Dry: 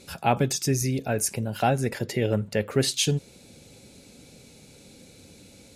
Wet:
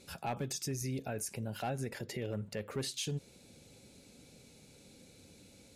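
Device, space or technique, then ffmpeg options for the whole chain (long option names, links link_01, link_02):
clipper into limiter: -af "asoftclip=type=hard:threshold=-14dB,alimiter=limit=-20.5dB:level=0:latency=1:release=123,volume=-8dB"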